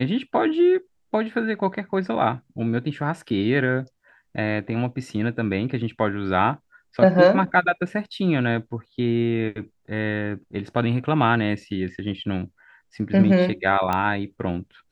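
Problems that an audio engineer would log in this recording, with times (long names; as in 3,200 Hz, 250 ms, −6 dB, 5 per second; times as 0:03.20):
0:13.93: click −11 dBFS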